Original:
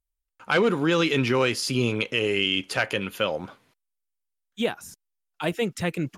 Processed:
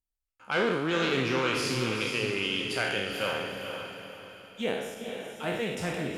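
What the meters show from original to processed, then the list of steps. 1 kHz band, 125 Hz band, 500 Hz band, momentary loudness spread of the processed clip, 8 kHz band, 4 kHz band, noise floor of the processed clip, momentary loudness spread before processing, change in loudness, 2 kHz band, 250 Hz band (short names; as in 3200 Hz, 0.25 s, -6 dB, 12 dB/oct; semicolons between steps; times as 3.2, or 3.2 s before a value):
-2.5 dB, -6.0 dB, -4.5 dB, 12 LU, -3.5 dB, -4.0 dB, under -85 dBFS, 8 LU, -5.0 dB, -3.0 dB, -5.5 dB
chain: spectral trails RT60 1.09 s; on a send: diffused feedback echo 0.451 s, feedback 42%, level -6 dB; on the sum: Doppler distortion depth 0.14 ms; gain -8.5 dB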